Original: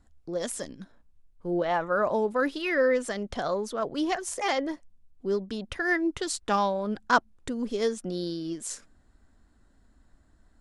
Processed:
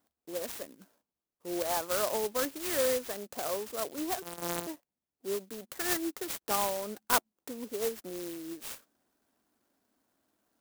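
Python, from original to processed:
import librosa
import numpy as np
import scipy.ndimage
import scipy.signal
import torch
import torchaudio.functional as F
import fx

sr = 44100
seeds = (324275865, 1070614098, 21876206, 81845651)

y = fx.sample_sort(x, sr, block=256, at=(4.22, 4.67))
y = scipy.signal.sosfilt(scipy.signal.butter(2, 330.0, 'highpass', fs=sr, output='sos'), y)
y = fx.clock_jitter(y, sr, seeds[0], jitter_ms=0.12)
y = y * 10.0 ** (-4.5 / 20.0)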